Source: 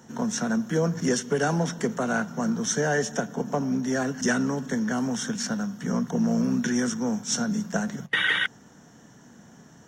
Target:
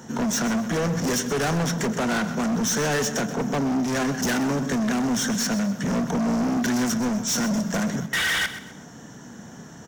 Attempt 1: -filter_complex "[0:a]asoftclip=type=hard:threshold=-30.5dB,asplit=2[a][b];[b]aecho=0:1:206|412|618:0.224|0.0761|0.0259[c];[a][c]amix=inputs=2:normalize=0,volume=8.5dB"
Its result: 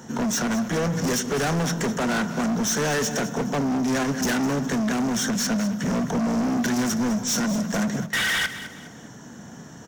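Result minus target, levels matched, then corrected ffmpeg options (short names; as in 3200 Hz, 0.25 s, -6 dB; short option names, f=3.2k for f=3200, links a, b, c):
echo 79 ms late
-filter_complex "[0:a]asoftclip=type=hard:threshold=-30.5dB,asplit=2[a][b];[b]aecho=0:1:127|254|381:0.224|0.0761|0.0259[c];[a][c]amix=inputs=2:normalize=0,volume=8.5dB"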